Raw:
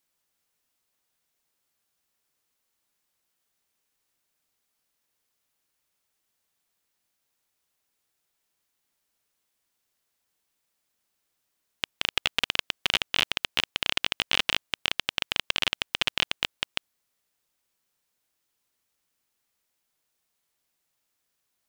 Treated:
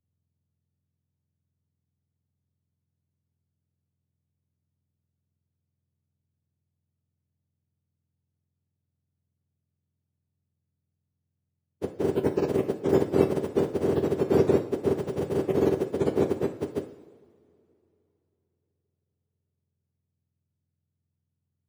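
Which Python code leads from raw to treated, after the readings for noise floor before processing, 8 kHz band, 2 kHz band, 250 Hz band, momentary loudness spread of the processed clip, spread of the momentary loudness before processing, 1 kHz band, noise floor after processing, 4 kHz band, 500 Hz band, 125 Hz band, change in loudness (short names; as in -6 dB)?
-79 dBFS, under -10 dB, -15.5 dB, +19.5 dB, 10 LU, 5 LU, 0.0 dB, -83 dBFS, -24.5 dB, +20.0 dB, +15.5 dB, +1.0 dB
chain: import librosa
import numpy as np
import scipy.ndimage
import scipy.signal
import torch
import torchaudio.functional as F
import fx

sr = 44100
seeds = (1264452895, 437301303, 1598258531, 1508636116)

y = fx.octave_mirror(x, sr, pivot_hz=1100.0)
y = fx.rev_double_slope(y, sr, seeds[0], early_s=0.55, late_s=4.5, knee_db=-18, drr_db=5.5)
y = fx.band_widen(y, sr, depth_pct=40)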